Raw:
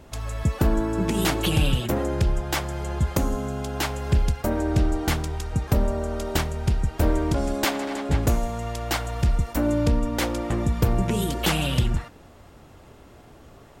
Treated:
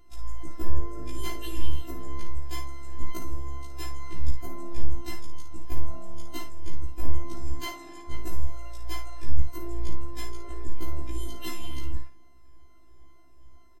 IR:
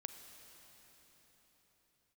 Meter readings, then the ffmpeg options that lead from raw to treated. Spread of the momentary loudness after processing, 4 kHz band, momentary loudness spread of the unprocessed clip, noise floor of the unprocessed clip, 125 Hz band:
7 LU, −13.0 dB, 5 LU, −49 dBFS, −11.5 dB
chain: -filter_complex "[0:a]afftfilt=real='re*pow(10,9/40*sin(2*PI*(1.9*log(max(b,1)*sr/1024/100)/log(2)-(-2.2)*(pts-256)/sr)))':imag='im*pow(10,9/40*sin(2*PI*(1.9*log(max(b,1)*sr/1024/100)/log(2)-(-2.2)*(pts-256)/sr)))':win_size=1024:overlap=0.75,bass=frequency=250:gain=12,treble=frequency=4000:gain=0,afftfilt=real='hypot(re,im)*cos(PI*b)':imag='0':win_size=512:overlap=0.75,asplit=2[link_01][link_02];[link_02]aecho=0:1:43|55:0.126|0.398[link_03];[link_01][link_03]amix=inputs=2:normalize=0,afftfilt=real='re*1.73*eq(mod(b,3),0)':imag='im*1.73*eq(mod(b,3),0)':win_size=2048:overlap=0.75,volume=-8.5dB"

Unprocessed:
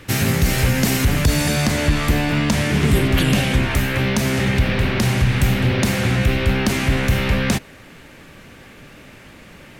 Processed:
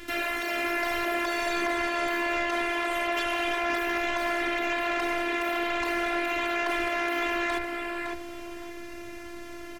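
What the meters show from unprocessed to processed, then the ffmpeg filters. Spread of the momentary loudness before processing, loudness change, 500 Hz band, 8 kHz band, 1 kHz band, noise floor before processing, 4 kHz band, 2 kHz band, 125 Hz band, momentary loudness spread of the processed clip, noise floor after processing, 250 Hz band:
2 LU, −9.5 dB, −5.0 dB, −16.5 dB, −0.5 dB, −43 dBFS, −10.0 dB, −4.0 dB, below −35 dB, 13 LU, −40 dBFS, −12.5 dB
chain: -filter_complex "[0:a]bandreject=frequency=60:width_type=h:width=6,bandreject=frequency=120:width_type=h:width=6,acrossover=split=3400[link_01][link_02];[link_02]acompressor=threshold=-39dB:ratio=4:attack=1:release=60[link_03];[link_01][link_03]amix=inputs=2:normalize=0,afftfilt=real='re*lt(hypot(re,im),0.251)':imag='im*lt(hypot(re,im),0.251)':win_size=1024:overlap=0.75,afftfilt=real='hypot(re,im)*cos(PI*b)':imag='0':win_size=512:overlap=0.75,asoftclip=type=tanh:threshold=-20dB,asplit=2[link_04][link_05];[link_05]adelay=560,lowpass=frequency=3600:poles=1,volume=-4dB,asplit=2[link_06][link_07];[link_07]adelay=560,lowpass=frequency=3600:poles=1,volume=0.31,asplit=2[link_08][link_09];[link_09]adelay=560,lowpass=frequency=3600:poles=1,volume=0.31,asplit=2[link_10][link_11];[link_11]adelay=560,lowpass=frequency=3600:poles=1,volume=0.31[link_12];[link_06][link_08][link_10][link_12]amix=inputs=4:normalize=0[link_13];[link_04][link_13]amix=inputs=2:normalize=0,volume=3dB"

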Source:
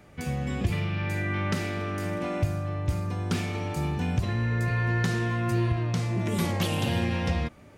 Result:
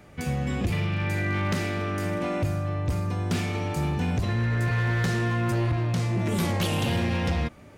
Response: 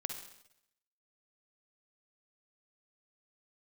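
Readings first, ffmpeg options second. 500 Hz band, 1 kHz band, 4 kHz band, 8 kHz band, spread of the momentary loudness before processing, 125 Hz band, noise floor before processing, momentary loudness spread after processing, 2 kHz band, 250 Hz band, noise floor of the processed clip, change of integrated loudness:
+2.0 dB, +2.0 dB, +1.5 dB, +2.0 dB, 5 LU, +1.5 dB, −50 dBFS, 4 LU, +1.5 dB, +1.5 dB, −48 dBFS, +1.5 dB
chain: -af "asoftclip=type=hard:threshold=-23dB,volume=2.5dB"

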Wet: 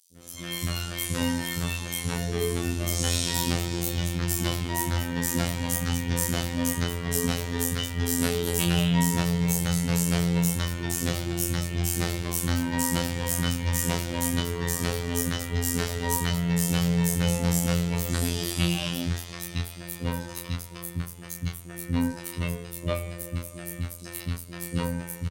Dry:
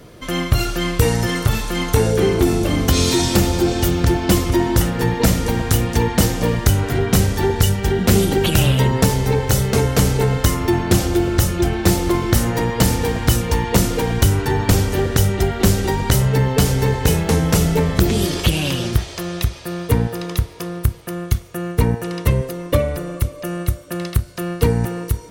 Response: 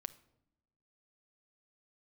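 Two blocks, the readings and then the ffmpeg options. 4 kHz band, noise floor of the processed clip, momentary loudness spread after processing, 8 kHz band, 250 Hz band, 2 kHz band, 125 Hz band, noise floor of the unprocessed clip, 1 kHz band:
−7.0 dB, −41 dBFS, 10 LU, −4.5 dB, −8.5 dB, −7.5 dB, −10.5 dB, −34 dBFS, −11.0 dB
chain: -filter_complex "[0:a]equalizer=frequency=8600:width_type=o:width=0.96:gain=3.5,acrossover=split=110|1600[link_01][link_02][link_03];[link_01]asoftclip=type=tanh:threshold=-21dB[link_04];[link_02]flanger=delay=16.5:depth=7.7:speed=0.26[link_05];[link_04][link_05][link_03]amix=inputs=3:normalize=0,afreqshift=25,acrossover=split=370|5100[link_06][link_07][link_08];[link_06]adelay=110[link_09];[link_07]adelay=160[link_10];[link_09][link_10][link_08]amix=inputs=3:normalize=0,asoftclip=type=hard:threshold=-8dB,asplit=2[link_11][link_12];[1:a]atrim=start_sample=2205,asetrate=34839,aresample=44100,adelay=27[link_13];[link_12][link_13]afir=irnorm=-1:irlink=0,volume=-1.5dB[link_14];[link_11][link_14]amix=inputs=2:normalize=0,afftfilt=real='hypot(re,im)*cos(PI*b)':imag='0':win_size=2048:overlap=0.75,volume=-4dB"

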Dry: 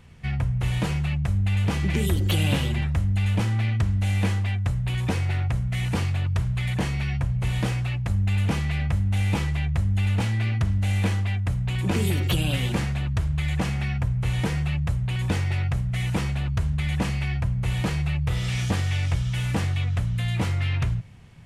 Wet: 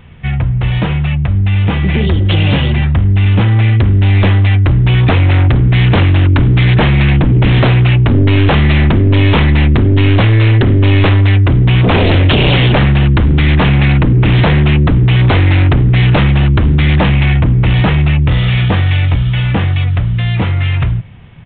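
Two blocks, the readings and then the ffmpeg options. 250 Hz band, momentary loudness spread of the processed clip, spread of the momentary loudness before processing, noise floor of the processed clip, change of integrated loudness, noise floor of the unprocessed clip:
+15.5 dB, 5 LU, 3 LU, −14 dBFS, +15.0 dB, −27 dBFS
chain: -af "dynaudnorm=framelen=260:gausssize=31:maxgain=12dB,aresample=8000,aeval=exprs='0.841*sin(PI/2*3.98*val(0)/0.841)':channel_layout=same,aresample=44100,volume=-4dB"

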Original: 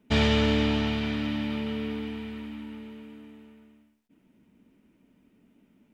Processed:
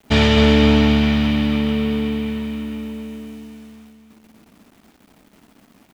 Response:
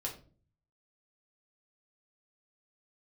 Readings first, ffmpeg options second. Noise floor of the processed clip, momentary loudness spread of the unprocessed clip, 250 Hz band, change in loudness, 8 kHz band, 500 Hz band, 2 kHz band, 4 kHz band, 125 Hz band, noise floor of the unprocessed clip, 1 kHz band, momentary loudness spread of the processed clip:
−55 dBFS, 20 LU, +11.5 dB, +10.5 dB, can't be measured, +10.5 dB, +9.0 dB, +9.0 dB, +10.5 dB, −67 dBFS, +9.5 dB, 18 LU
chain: -filter_complex "[0:a]acrusher=bits=9:mix=0:aa=0.000001,asplit=2[link_01][link_02];[link_02]aecho=0:1:259|518|777|1036|1295|1554:0.422|0.219|0.114|0.0593|0.0308|0.016[link_03];[link_01][link_03]amix=inputs=2:normalize=0,volume=8dB"

